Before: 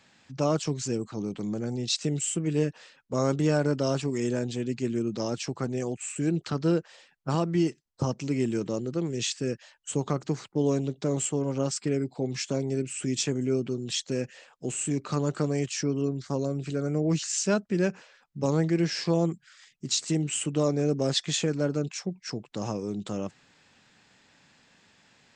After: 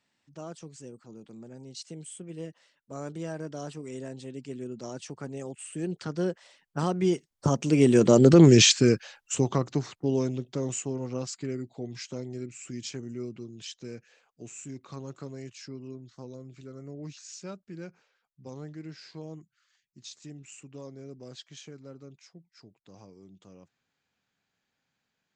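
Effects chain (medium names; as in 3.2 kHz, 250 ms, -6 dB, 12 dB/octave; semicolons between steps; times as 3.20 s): Doppler pass-by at 8.38 s, 24 m/s, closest 3.6 m; loudness maximiser +24.5 dB; trim -5 dB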